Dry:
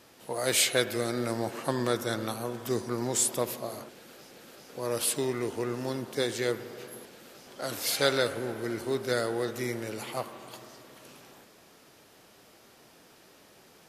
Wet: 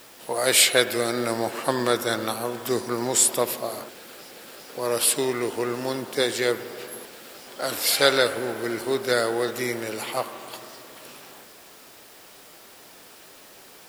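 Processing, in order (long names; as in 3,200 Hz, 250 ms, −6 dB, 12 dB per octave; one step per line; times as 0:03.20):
low-shelf EQ 220 Hz −11.5 dB
notch filter 6,300 Hz, Q 9.2
bit-depth reduction 10 bits, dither triangular
level +8 dB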